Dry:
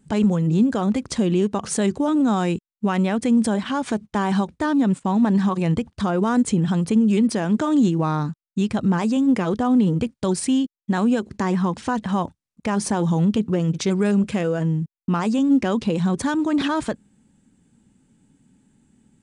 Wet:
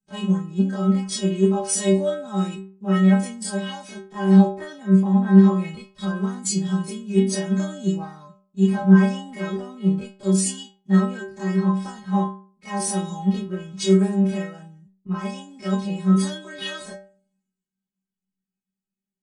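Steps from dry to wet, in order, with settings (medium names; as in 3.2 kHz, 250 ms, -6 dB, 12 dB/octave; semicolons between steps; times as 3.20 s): every event in the spectrogram widened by 60 ms; inharmonic resonator 190 Hz, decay 0.61 s, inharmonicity 0.008; three bands expanded up and down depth 70%; trim +8.5 dB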